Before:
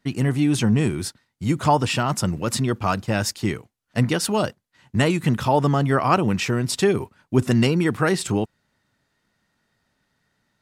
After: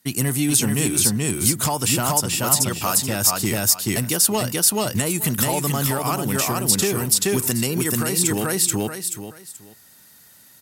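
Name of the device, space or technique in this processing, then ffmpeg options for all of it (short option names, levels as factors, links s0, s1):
FM broadcast chain: -filter_complex "[0:a]asettb=1/sr,asplit=3[s0][s1][s2];[s0]atrim=end=2.264[s3];[s1]atrim=start=2.26:end=3.01,asetpts=PTS-STARTPTS,afade=t=in:d=0.004:c=qsin,afade=t=out:st=0.746:d=0.004:c=qsin,lowshelf=f=460:g=-8[s4];[s2]atrim=start=3.006[s5];[s3][s4]acrossfade=d=0.004:c1=hsin:c2=qsin[s6];[s6][s5]acrossfade=d=0.004:c1=qsin:c2=hsin,highpass=61,aecho=1:1:431|862|1293:0.708|0.12|0.0205,dynaudnorm=f=200:g=9:m=3.16,acrossover=split=1300|7500[s7][s8][s9];[s7]acompressor=threshold=0.158:ratio=4[s10];[s8]acompressor=threshold=0.0355:ratio=4[s11];[s9]acompressor=threshold=0.00891:ratio=4[s12];[s10][s11][s12]amix=inputs=3:normalize=0,aemphasis=mode=production:type=50fm,alimiter=limit=0.282:level=0:latency=1:release=430,asoftclip=type=hard:threshold=0.211,lowpass=f=15000:w=0.5412,lowpass=f=15000:w=1.3066,aemphasis=mode=production:type=50fm"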